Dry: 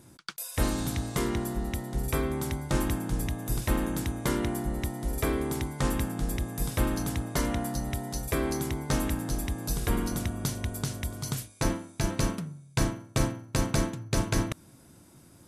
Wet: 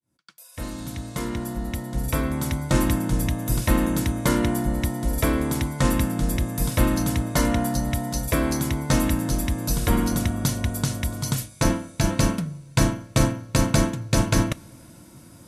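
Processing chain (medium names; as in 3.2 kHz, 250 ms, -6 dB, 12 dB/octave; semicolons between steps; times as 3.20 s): fade-in on the opening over 2.74 s; comb of notches 400 Hz; two-slope reverb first 0.23 s, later 3.7 s, from -20 dB, DRR 18.5 dB; trim +8 dB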